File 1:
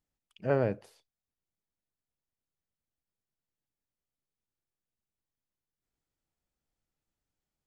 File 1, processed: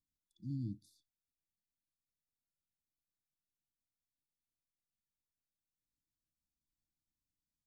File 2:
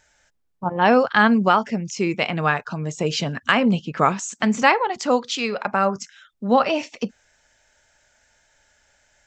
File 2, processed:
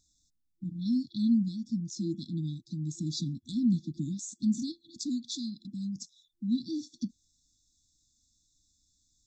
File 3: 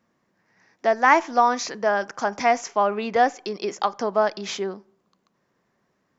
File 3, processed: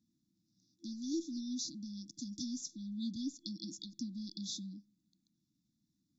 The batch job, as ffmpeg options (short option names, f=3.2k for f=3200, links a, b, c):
-af "afftfilt=real='re*(1-between(b*sr/4096,340,3400))':imag='im*(1-between(b*sr/4096,340,3400))':win_size=4096:overlap=0.75,adynamicequalizer=threshold=0.00398:dfrequency=1800:dqfactor=0.7:tfrequency=1800:tqfactor=0.7:attack=5:release=100:ratio=0.375:range=2:mode=cutabove:tftype=highshelf,volume=-6.5dB"